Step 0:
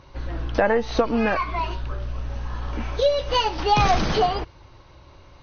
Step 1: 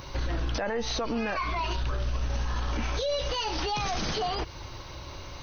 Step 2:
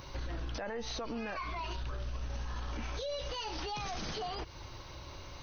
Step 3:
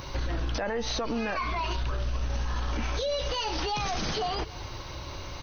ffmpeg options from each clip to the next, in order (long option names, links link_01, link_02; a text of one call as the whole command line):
ffmpeg -i in.wav -af "aemphasis=mode=production:type=75kf,acompressor=threshold=-27dB:ratio=10,alimiter=level_in=4.5dB:limit=-24dB:level=0:latency=1:release=19,volume=-4.5dB,volume=6.5dB" out.wav
ffmpeg -i in.wav -af "acompressor=threshold=-34dB:ratio=1.5,volume=-6dB" out.wav
ffmpeg -i in.wav -af "aecho=1:1:280:0.0944,volume=8.5dB" out.wav